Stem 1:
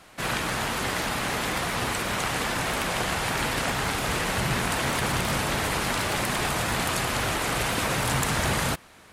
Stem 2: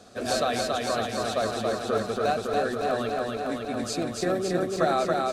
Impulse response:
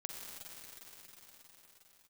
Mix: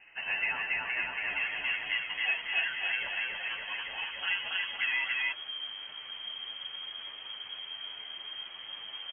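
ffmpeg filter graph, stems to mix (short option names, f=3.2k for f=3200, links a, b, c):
-filter_complex "[0:a]asoftclip=type=tanh:threshold=-19dB,adelay=1100,volume=-17.5dB[a];[1:a]highpass=760,alimiter=limit=-20.5dB:level=0:latency=1:release=217,volume=2.5dB,asplit=2[b][c];[c]volume=-9dB[d];[2:a]atrim=start_sample=2205[e];[d][e]afir=irnorm=-1:irlink=0[f];[a][b][f]amix=inputs=3:normalize=0,asubboost=boost=6:cutoff=180,lowpass=f=2.8k:t=q:w=0.5098,lowpass=f=2.8k:t=q:w=0.6013,lowpass=f=2.8k:t=q:w=0.9,lowpass=f=2.8k:t=q:w=2.563,afreqshift=-3300,asplit=2[g][h];[h]adelay=10.1,afreqshift=0.42[i];[g][i]amix=inputs=2:normalize=1"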